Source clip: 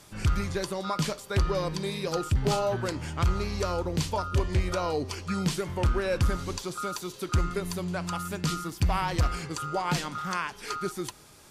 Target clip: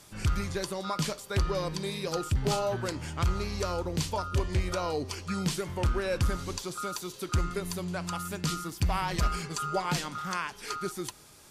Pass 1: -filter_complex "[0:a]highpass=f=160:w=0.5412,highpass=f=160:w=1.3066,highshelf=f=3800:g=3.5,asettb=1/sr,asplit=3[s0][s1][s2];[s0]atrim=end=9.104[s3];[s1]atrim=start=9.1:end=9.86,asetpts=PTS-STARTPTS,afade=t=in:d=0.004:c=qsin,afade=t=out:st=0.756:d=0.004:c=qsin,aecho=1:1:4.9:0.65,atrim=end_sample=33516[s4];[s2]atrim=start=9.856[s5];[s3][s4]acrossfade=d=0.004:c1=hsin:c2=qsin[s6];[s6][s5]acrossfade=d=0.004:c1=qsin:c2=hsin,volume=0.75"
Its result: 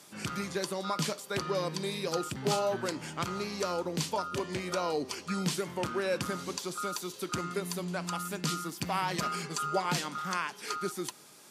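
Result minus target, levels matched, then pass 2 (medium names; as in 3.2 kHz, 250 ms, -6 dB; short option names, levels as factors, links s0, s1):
125 Hz band -6.0 dB
-filter_complex "[0:a]highshelf=f=3800:g=3.5,asettb=1/sr,asplit=3[s0][s1][s2];[s0]atrim=end=9.104[s3];[s1]atrim=start=9.1:end=9.86,asetpts=PTS-STARTPTS,afade=t=in:d=0.004:c=qsin,afade=t=out:st=0.756:d=0.004:c=qsin,aecho=1:1:4.9:0.65,atrim=end_sample=33516[s4];[s2]atrim=start=9.856[s5];[s3][s4]acrossfade=d=0.004:c1=hsin:c2=qsin[s6];[s6][s5]acrossfade=d=0.004:c1=qsin:c2=hsin,volume=0.75"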